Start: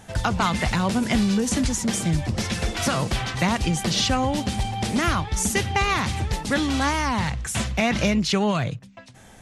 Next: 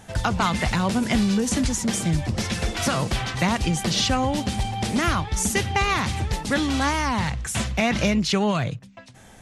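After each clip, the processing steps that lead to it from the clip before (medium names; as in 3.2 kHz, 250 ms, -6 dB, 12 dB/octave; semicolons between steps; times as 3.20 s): no audible change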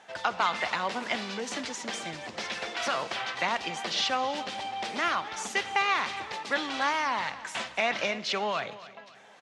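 band-pass 560–4200 Hz; feedback delay 274 ms, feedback 43%, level -17 dB; reverberation RT60 0.95 s, pre-delay 15 ms, DRR 17.5 dB; trim -2.5 dB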